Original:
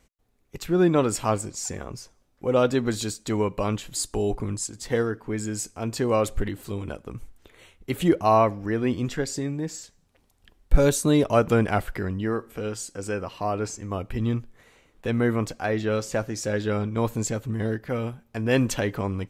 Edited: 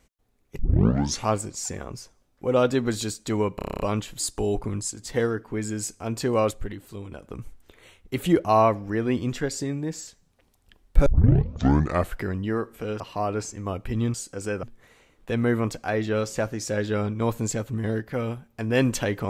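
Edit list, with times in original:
0:00.59: tape start 0.70 s
0:03.56: stutter 0.03 s, 9 plays
0:06.27–0:06.98: clip gain −6 dB
0:10.82: tape start 1.08 s
0:12.76–0:13.25: move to 0:14.39

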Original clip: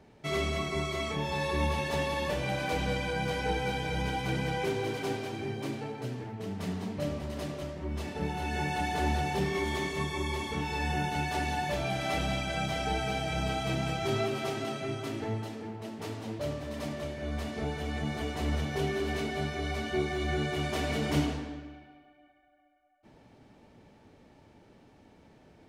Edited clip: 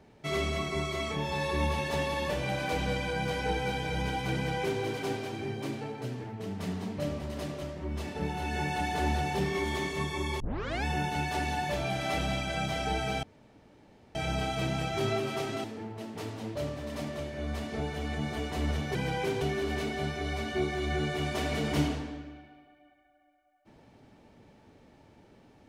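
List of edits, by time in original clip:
0:04.35–0:04.81: duplicate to 0:18.79
0:10.40: tape start 0.44 s
0:13.23: splice in room tone 0.92 s
0:14.72–0:15.48: remove

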